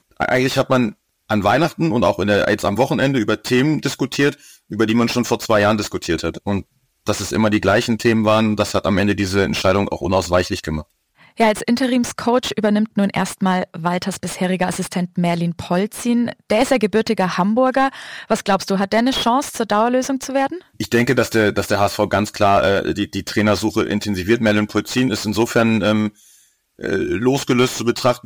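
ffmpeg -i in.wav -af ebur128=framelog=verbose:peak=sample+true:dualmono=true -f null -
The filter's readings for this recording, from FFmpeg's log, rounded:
Integrated loudness:
  I:         -15.1 LUFS
  Threshold: -25.3 LUFS
Loudness range:
  LRA:         2.1 LU
  Threshold: -35.3 LUFS
  LRA low:   -16.5 LUFS
  LRA high:  -14.4 LUFS
Sample peak:
  Peak:       -1.9 dBFS
True peak:
  Peak:       -1.9 dBFS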